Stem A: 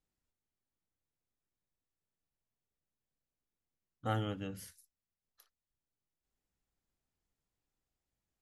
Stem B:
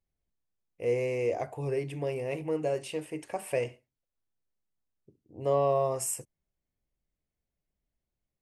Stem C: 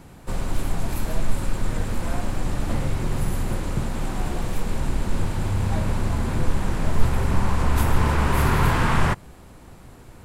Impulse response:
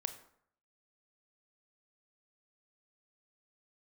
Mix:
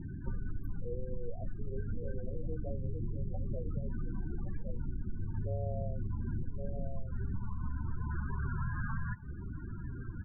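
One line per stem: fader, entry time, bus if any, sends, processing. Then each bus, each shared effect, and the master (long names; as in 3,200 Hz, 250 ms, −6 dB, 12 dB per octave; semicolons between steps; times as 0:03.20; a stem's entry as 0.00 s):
−15.5 dB, 0.00 s, no send, no echo send, high-shelf EQ 4,100 Hz +8 dB
−6.0 dB, 0.00 s, send −23 dB, echo send −5.5 dB, Butterworth low-pass 780 Hz 72 dB per octave; hum removal 68.88 Hz, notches 3
+2.0 dB, 0.00 s, send −13 dB, echo send −22 dB, graphic EQ with 15 bands 100 Hz +4 dB, 630 Hz −11 dB, 1,600 Hz +6 dB, 6,300 Hz −8 dB; downward compressor 2.5 to 1, threshold −30 dBFS, peak gain reduction 14.5 dB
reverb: on, RT60 0.65 s, pre-delay 22 ms
echo: single-tap delay 1,117 ms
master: high-shelf EQ 8,100 Hz +7 dB; spectral peaks only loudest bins 16; downward compressor 6 to 1, threshold −32 dBFS, peak gain reduction 13 dB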